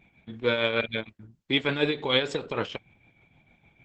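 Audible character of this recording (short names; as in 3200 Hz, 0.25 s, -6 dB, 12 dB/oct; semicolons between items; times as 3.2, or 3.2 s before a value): tremolo triangle 6.6 Hz, depth 65%; Opus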